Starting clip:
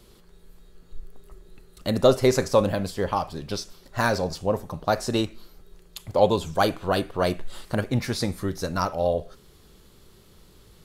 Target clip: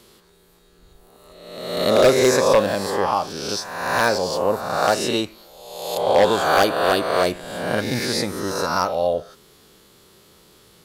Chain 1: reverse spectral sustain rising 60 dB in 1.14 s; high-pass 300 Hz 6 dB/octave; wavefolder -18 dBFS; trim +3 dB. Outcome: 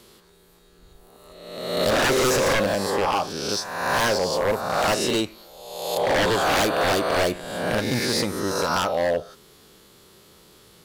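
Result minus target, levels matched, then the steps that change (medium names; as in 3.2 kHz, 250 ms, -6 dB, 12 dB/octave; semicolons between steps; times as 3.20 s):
wavefolder: distortion +15 dB
change: wavefolder -9.5 dBFS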